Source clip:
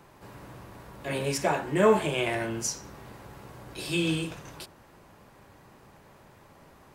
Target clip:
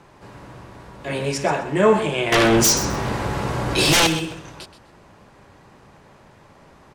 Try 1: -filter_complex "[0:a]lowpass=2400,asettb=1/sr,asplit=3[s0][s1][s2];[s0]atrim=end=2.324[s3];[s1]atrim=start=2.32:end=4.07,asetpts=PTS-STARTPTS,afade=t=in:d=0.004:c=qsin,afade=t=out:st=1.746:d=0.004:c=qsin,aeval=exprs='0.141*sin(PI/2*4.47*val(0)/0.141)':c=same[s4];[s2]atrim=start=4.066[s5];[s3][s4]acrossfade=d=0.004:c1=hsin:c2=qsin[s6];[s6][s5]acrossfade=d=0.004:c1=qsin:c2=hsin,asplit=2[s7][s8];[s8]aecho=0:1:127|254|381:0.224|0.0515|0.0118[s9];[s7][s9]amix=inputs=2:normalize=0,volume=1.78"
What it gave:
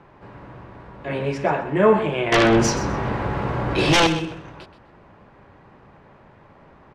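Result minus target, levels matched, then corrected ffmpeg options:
8 kHz band -8.0 dB
-filter_complex "[0:a]lowpass=8000,asettb=1/sr,asplit=3[s0][s1][s2];[s0]atrim=end=2.324[s3];[s1]atrim=start=2.32:end=4.07,asetpts=PTS-STARTPTS,afade=t=in:d=0.004:c=qsin,afade=t=out:st=1.746:d=0.004:c=qsin,aeval=exprs='0.141*sin(PI/2*4.47*val(0)/0.141)':c=same[s4];[s2]atrim=start=4.066[s5];[s3][s4]acrossfade=d=0.004:c1=hsin:c2=qsin[s6];[s6][s5]acrossfade=d=0.004:c1=qsin:c2=hsin,asplit=2[s7][s8];[s8]aecho=0:1:127|254|381:0.224|0.0515|0.0118[s9];[s7][s9]amix=inputs=2:normalize=0,volume=1.78"

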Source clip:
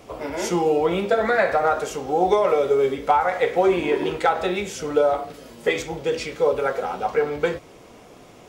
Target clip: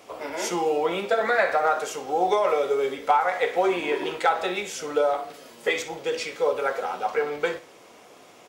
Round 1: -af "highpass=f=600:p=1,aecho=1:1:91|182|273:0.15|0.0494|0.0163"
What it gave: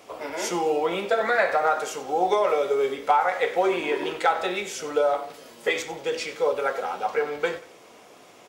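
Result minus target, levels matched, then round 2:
echo 30 ms late
-af "highpass=f=600:p=1,aecho=1:1:61|122|183:0.15|0.0494|0.0163"

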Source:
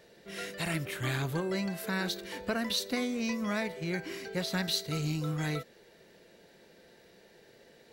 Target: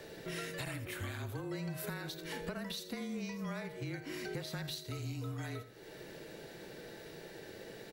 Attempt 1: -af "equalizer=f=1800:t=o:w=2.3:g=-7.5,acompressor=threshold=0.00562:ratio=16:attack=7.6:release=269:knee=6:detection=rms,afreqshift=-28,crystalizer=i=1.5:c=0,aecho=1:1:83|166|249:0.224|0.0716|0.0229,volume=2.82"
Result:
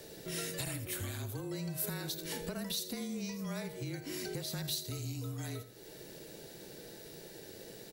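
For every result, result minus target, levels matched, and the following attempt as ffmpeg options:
8 kHz band +6.5 dB; 2 kHz band -5.0 dB
-af "equalizer=f=1800:t=o:w=2.3:g=-7.5,acompressor=threshold=0.00562:ratio=16:attack=7.6:release=269:knee=6:detection=rms,highshelf=f=3500:g=-9.5,afreqshift=-28,crystalizer=i=1.5:c=0,aecho=1:1:83|166|249:0.224|0.0716|0.0229,volume=2.82"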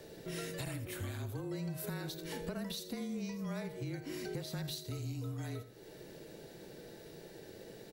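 2 kHz band -5.0 dB
-af "acompressor=threshold=0.00562:ratio=16:attack=7.6:release=269:knee=6:detection=rms,highshelf=f=3500:g=-9.5,afreqshift=-28,crystalizer=i=1.5:c=0,aecho=1:1:83|166|249:0.224|0.0716|0.0229,volume=2.82"

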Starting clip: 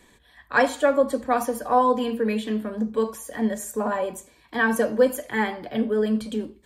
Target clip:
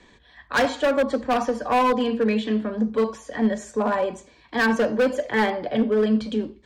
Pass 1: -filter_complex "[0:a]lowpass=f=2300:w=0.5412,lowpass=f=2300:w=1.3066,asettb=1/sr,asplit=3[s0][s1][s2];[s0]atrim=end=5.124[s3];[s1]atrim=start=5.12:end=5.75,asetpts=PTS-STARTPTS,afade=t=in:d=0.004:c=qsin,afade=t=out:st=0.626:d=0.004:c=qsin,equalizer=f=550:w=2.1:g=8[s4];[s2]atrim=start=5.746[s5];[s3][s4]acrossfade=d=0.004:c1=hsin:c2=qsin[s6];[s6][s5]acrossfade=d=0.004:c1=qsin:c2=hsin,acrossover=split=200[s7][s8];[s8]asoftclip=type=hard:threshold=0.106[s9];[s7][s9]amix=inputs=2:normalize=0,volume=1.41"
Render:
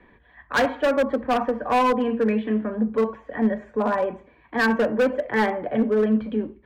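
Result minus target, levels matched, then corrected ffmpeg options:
8 kHz band -5.5 dB
-filter_complex "[0:a]lowpass=f=6000:w=0.5412,lowpass=f=6000:w=1.3066,asettb=1/sr,asplit=3[s0][s1][s2];[s0]atrim=end=5.124[s3];[s1]atrim=start=5.12:end=5.75,asetpts=PTS-STARTPTS,afade=t=in:d=0.004:c=qsin,afade=t=out:st=0.626:d=0.004:c=qsin,equalizer=f=550:w=2.1:g=8[s4];[s2]atrim=start=5.746[s5];[s3][s4]acrossfade=d=0.004:c1=hsin:c2=qsin[s6];[s6][s5]acrossfade=d=0.004:c1=qsin:c2=hsin,acrossover=split=200[s7][s8];[s8]asoftclip=type=hard:threshold=0.106[s9];[s7][s9]amix=inputs=2:normalize=0,volume=1.41"

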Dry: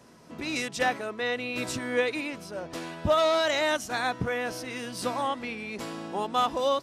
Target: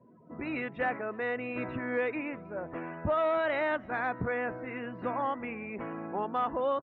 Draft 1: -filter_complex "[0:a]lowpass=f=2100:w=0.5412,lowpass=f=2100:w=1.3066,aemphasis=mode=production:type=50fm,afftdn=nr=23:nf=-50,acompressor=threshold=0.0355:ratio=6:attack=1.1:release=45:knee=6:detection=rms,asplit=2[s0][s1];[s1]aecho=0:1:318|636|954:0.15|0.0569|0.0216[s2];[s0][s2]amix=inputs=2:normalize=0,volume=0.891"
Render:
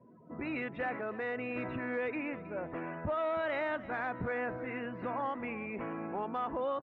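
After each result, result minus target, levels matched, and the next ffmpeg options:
echo-to-direct +11.5 dB; compression: peak gain reduction +6 dB
-filter_complex "[0:a]lowpass=f=2100:w=0.5412,lowpass=f=2100:w=1.3066,aemphasis=mode=production:type=50fm,afftdn=nr=23:nf=-50,acompressor=threshold=0.0355:ratio=6:attack=1.1:release=45:knee=6:detection=rms,asplit=2[s0][s1];[s1]aecho=0:1:318|636:0.0398|0.0151[s2];[s0][s2]amix=inputs=2:normalize=0,volume=0.891"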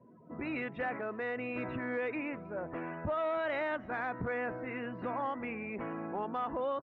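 compression: peak gain reduction +6 dB
-filter_complex "[0:a]lowpass=f=2100:w=0.5412,lowpass=f=2100:w=1.3066,aemphasis=mode=production:type=50fm,afftdn=nr=23:nf=-50,acompressor=threshold=0.0794:ratio=6:attack=1.1:release=45:knee=6:detection=rms,asplit=2[s0][s1];[s1]aecho=0:1:318|636:0.0398|0.0151[s2];[s0][s2]amix=inputs=2:normalize=0,volume=0.891"

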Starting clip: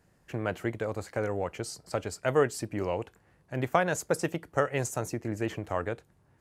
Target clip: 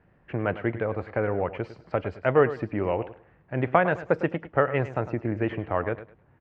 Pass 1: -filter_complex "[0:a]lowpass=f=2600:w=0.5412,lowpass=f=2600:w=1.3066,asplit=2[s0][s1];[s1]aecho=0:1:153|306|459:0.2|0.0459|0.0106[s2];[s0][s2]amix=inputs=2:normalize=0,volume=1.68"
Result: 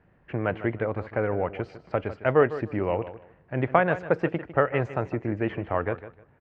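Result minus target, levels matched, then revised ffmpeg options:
echo 49 ms late
-filter_complex "[0:a]lowpass=f=2600:w=0.5412,lowpass=f=2600:w=1.3066,asplit=2[s0][s1];[s1]aecho=0:1:104|208|312:0.2|0.0459|0.0106[s2];[s0][s2]amix=inputs=2:normalize=0,volume=1.68"

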